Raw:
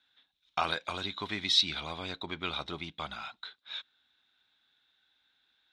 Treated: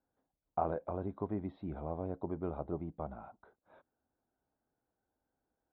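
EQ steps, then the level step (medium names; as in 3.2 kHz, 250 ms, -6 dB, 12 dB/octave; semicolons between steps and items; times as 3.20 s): four-pole ladder low-pass 790 Hz, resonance 30%; bass shelf 96 Hz +5.5 dB; +8.0 dB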